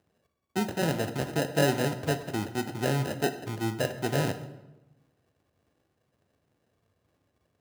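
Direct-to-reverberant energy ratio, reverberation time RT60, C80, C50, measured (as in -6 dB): 8.5 dB, 1.0 s, 13.5 dB, 11.5 dB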